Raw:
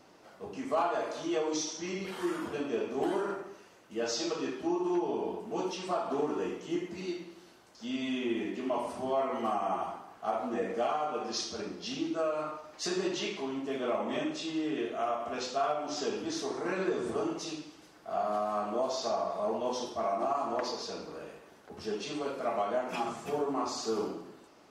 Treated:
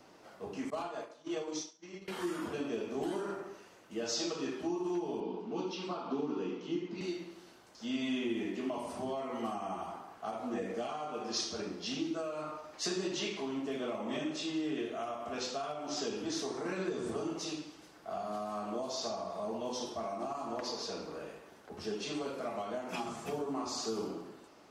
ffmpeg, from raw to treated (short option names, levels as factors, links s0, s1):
-filter_complex "[0:a]asettb=1/sr,asplit=3[s0][s1][s2];[s0]atrim=end=0.704[s3];[s1]atrim=start=0.7:end=2.08,asetpts=PTS-STARTPTS,afade=t=in:d=0.004:c=qsin,afade=t=out:st=1.376:d=0.004:c=qsin,agate=range=0.0224:threshold=0.0398:ratio=3:release=100:detection=peak[s4];[s2]atrim=start=2.076[s5];[s3][s4]acrossfade=d=0.004:c1=hsin:c2=qsin[s6];[s6][s5]acrossfade=d=0.004:c1=qsin:c2=hsin,asettb=1/sr,asplit=3[s7][s8][s9];[s7]atrim=end=5.204[s10];[s8]atrim=start=5.2:end=7.01,asetpts=PTS-STARTPTS,afade=t=in:d=0.004:c=qsin,afade=t=out:st=1.806:d=0.004:c=qsin,highpass=f=130:w=0.5412,highpass=f=130:w=1.3066,equalizer=f=260:t=q:w=4:g=4,equalizer=f=640:t=q:w=4:g=-8,equalizer=f=1800:t=q:w=4:g=-8,lowpass=f=5100:w=0.5412,lowpass=f=5100:w=1.3066[s11];[s9]atrim=start=7.006[s12];[s10][s11]acrossfade=d=0.004:c1=hsin:c2=qsin[s13];[s13][s12]acrossfade=d=0.004:c1=qsin:c2=hsin,acrossover=split=280|3000[s14][s15][s16];[s15]acompressor=threshold=0.0141:ratio=6[s17];[s14][s17][s16]amix=inputs=3:normalize=0"